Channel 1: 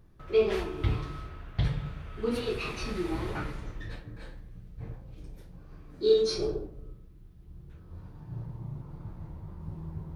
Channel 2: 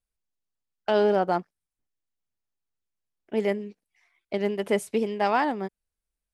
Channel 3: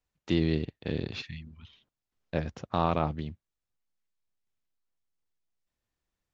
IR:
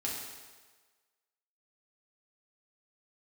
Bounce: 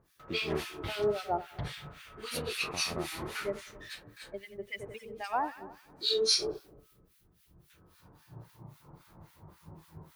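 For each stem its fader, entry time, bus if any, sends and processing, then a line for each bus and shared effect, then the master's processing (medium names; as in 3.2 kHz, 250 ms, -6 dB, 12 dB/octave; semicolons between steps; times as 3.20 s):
+2.5 dB, 0.00 s, no send, no echo send, tilt EQ +4 dB/octave
-0.5 dB, 0.00 s, no send, echo send -12 dB, expander on every frequency bin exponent 2; high-pass 400 Hz 12 dB/octave; treble shelf 5.9 kHz -11.5 dB
-8.5 dB, 0.00 s, no send, no echo send, none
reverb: none
echo: feedback delay 91 ms, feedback 58%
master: harmonic tremolo 3.7 Hz, depth 100%, crossover 1.3 kHz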